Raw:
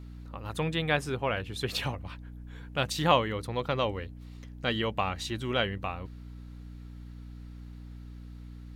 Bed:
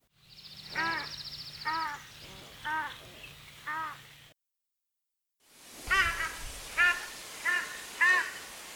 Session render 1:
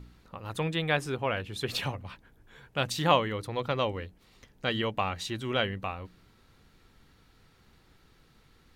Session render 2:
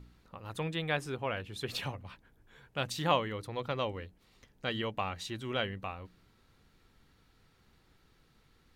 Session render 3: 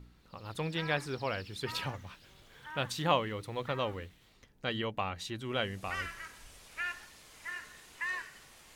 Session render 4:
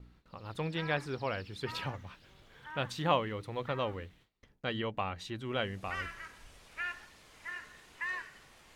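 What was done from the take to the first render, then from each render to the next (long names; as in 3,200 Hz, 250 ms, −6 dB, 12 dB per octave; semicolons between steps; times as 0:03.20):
hum removal 60 Hz, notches 5
level −5 dB
mix in bed −12 dB
noise gate with hold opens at −51 dBFS; high-shelf EQ 5,100 Hz −9.5 dB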